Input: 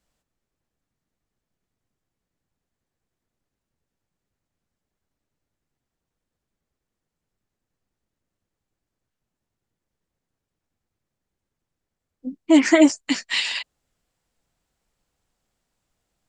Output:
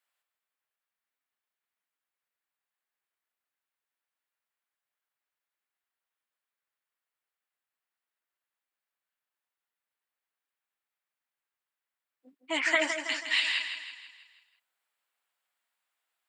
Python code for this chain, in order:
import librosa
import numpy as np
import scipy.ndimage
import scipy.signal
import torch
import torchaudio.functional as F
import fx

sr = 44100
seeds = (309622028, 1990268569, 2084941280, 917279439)

y = scipy.signal.sosfilt(scipy.signal.butter(2, 1300.0, 'highpass', fs=sr, output='sos'), x)
y = fx.peak_eq(y, sr, hz=6100.0, db=-13.0, octaves=1.1)
y = fx.echo_feedback(y, sr, ms=162, feedback_pct=49, wet_db=-8)